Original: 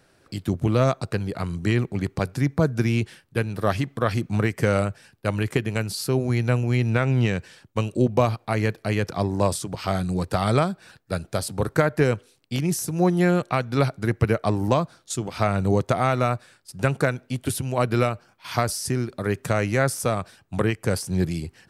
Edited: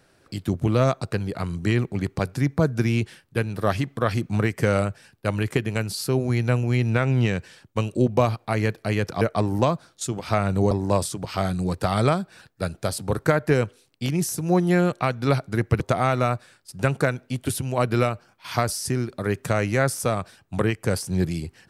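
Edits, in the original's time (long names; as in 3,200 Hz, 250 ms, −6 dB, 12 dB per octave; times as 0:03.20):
0:14.30–0:15.80: move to 0:09.21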